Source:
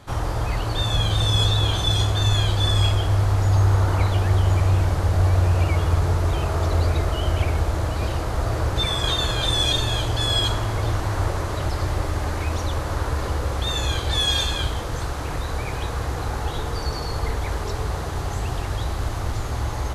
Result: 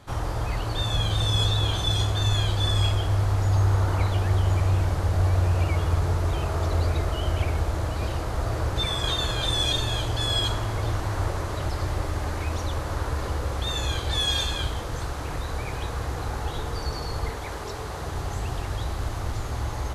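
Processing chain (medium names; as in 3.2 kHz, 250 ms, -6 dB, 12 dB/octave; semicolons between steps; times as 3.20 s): 17.29–18.02 s: bass shelf 120 Hz -9.5 dB; trim -3.5 dB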